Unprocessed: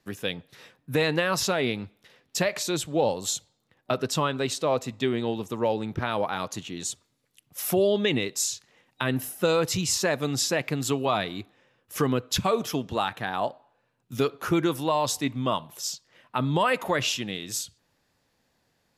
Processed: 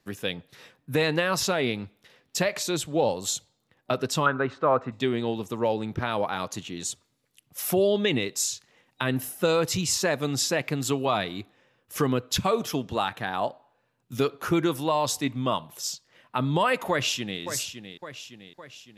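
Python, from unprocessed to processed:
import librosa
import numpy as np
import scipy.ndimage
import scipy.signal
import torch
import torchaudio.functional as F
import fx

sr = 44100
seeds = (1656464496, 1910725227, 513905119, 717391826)

y = fx.lowpass_res(x, sr, hz=1400.0, q=3.9, at=(4.26, 4.92))
y = fx.echo_throw(y, sr, start_s=16.9, length_s=0.51, ms=560, feedback_pct=55, wet_db=-9.5)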